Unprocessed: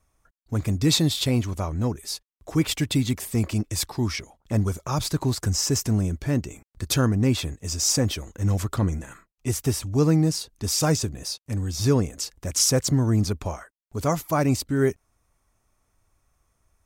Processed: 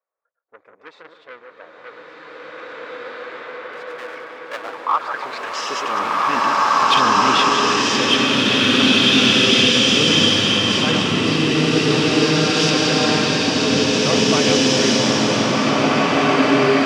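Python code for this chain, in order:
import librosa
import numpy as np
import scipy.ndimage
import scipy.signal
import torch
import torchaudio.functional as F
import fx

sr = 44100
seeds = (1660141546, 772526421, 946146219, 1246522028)

p1 = fx.reverse_delay(x, sr, ms=107, wet_db=-5.0)
p2 = fx.filter_sweep_lowpass(p1, sr, from_hz=500.0, to_hz=3000.0, start_s=4.45, end_s=5.5, q=5.4)
p3 = fx.power_curve(p2, sr, exponent=0.7, at=(3.73, 4.86))
p4 = 10.0 ** (-20.0 / 20.0) * np.tanh(p3 / 10.0 ** (-20.0 / 20.0))
p5 = p3 + (p4 * librosa.db_to_amplitude(-3.5))
p6 = fx.low_shelf(p5, sr, hz=330.0, db=-6.5)
p7 = p6 + fx.echo_filtered(p6, sr, ms=147, feedback_pct=79, hz=3300.0, wet_db=-13.5, dry=0)
p8 = fx.filter_sweep_highpass(p7, sr, from_hz=1500.0, to_hz=210.0, start_s=4.25, end_s=6.73, q=1.5)
p9 = fx.peak_eq(p8, sr, hz=3300.0, db=5.5, octaves=3.0)
p10 = fx.rev_bloom(p9, sr, seeds[0], attack_ms=2250, drr_db=-11.0)
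y = p10 * librosa.db_to_amplitude(-6.0)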